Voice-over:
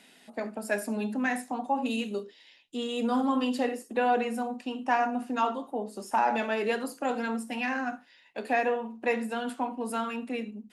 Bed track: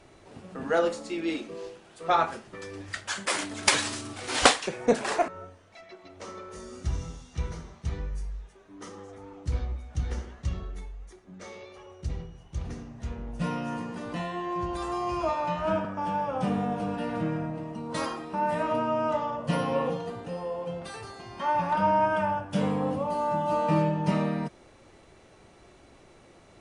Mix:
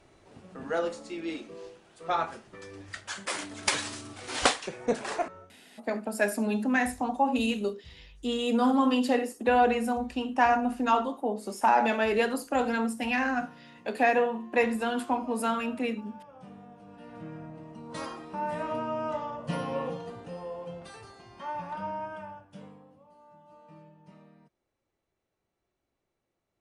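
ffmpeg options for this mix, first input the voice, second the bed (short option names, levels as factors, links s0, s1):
-filter_complex "[0:a]adelay=5500,volume=1.41[s0];[1:a]volume=3.35,afade=t=out:st=5.32:d=0.26:silence=0.16788,afade=t=in:st=16.84:d=1.43:silence=0.16788,afade=t=out:st=20.49:d=2.38:silence=0.0668344[s1];[s0][s1]amix=inputs=2:normalize=0"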